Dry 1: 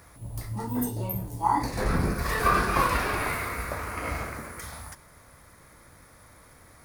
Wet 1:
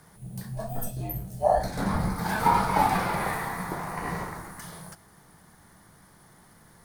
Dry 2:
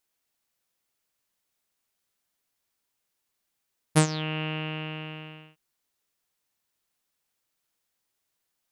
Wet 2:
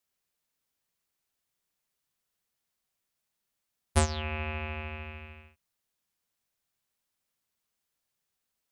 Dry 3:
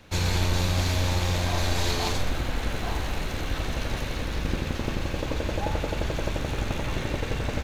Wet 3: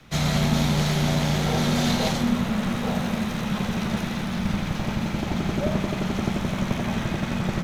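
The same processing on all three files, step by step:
dynamic EQ 1000 Hz, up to +5 dB, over -43 dBFS, Q 1.5; frequency shift -240 Hz; normalise peaks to -9 dBFS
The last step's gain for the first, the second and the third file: -2.0, -3.5, +1.5 dB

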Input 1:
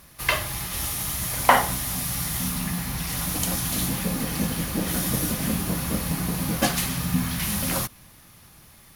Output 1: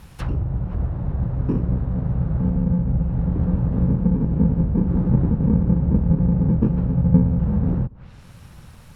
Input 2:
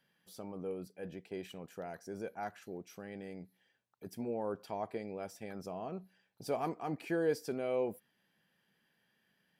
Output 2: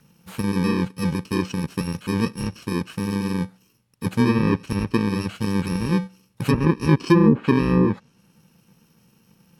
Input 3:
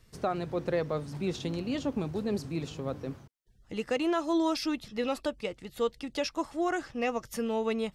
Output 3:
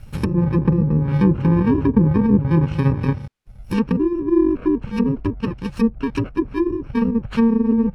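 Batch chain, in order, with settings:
FFT order left unsorted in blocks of 64 samples; treble ducked by the level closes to 480 Hz, closed at -26.5 dBFS; tone controls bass +8 dB, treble -9 dB; normalise peaks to -3 dBFS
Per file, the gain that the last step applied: +5.0, +20.5, +15.5 dB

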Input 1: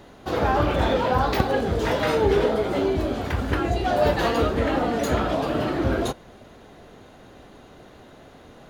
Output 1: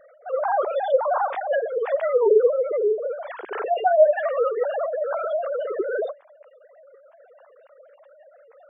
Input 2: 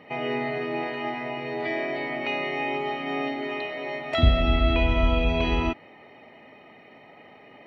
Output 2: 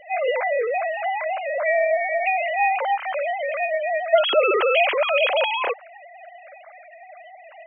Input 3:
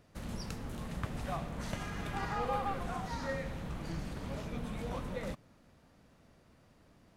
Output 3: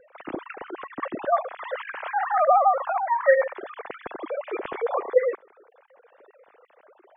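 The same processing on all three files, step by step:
sine-wave speech; high shelf 2300 Hz -7 dB; spectral gate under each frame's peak -25 dB strong; normalise peaks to -6 dBFS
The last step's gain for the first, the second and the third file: +0.5, +4.5, +14.0 dB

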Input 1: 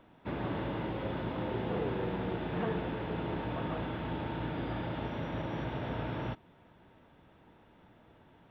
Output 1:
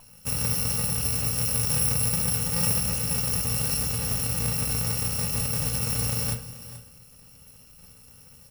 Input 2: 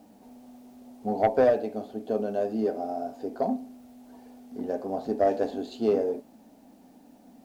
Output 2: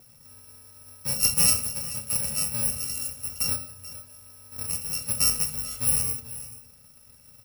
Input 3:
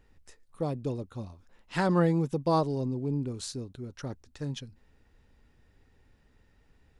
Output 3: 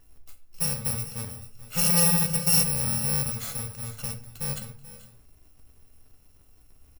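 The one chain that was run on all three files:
FFT order left unsorted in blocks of 128 samples; tapped delay 0.434/0.459 s -16.5/-20 dB; shoebox room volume 47 m³, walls mixed, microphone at 0.32 m; match loudness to -24 LUFS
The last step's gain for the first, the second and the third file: +8.0, -0.5, +3.0 dB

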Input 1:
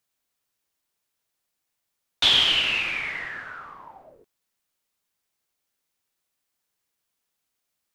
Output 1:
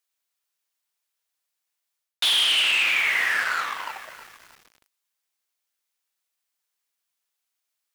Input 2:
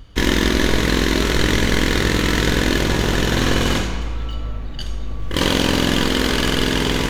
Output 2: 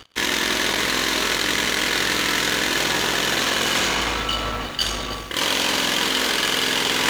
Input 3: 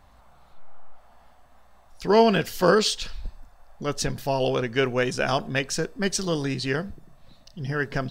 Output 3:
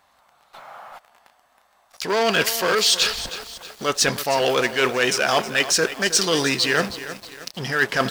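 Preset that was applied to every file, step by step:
sample leveller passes 3; HPF 1000 Hz 6 dB/oct; reverse; compressor 6:1, threshold -25 dBFS; reverse; lo-fi delay 0.316 s, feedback 55%, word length 7-bit, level -12.5 dB; match loudness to -20 LUFS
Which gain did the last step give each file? +5.0, +6.0, +8.5 dB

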